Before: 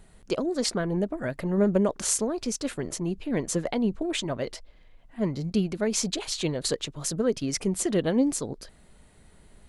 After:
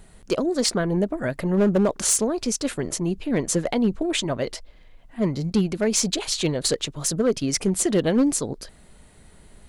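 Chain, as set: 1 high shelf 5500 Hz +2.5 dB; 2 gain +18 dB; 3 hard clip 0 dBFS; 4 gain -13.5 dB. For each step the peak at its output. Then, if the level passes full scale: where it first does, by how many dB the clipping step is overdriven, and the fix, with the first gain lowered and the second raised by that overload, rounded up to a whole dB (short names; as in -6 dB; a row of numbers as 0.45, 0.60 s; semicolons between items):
-9.0, +9.0, 0.0, -13.5 dBFS; step 2, 9.0 dB; step 2 +9 dB, step 4 -4.5 dB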